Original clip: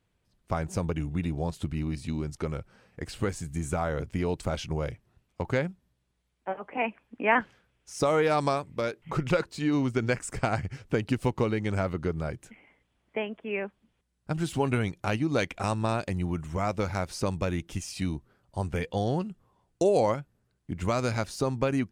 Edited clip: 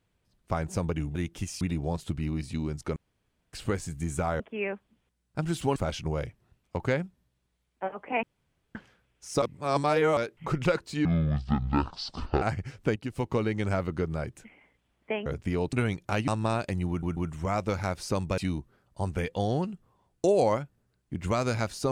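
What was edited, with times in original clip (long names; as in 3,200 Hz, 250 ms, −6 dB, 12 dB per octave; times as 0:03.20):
0:02.50–0:03.07: fill with room tone
0:03.94–0:04.41: swap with 0:13.32–0:14.68
0:06.88–0:07.40: fill with room tone
0:08.07–0:08.82: reverse
0:09.70–0:10.48: play speed 57%
0:11.02–0:11.49: fade in, from −12.5 dB
0:15.23–0:15.67: remove
0:16.28: stutter 0.14 s, 3 plays
0:17.49–0:17.95: move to 0:01.15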